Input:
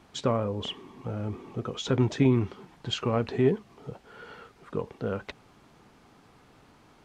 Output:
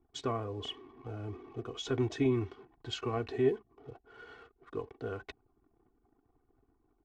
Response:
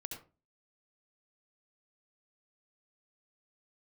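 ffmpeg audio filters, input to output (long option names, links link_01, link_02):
-af "anlmdn=0.00251,aecho=1:1:2.7:0.8,volume=-8.5dB"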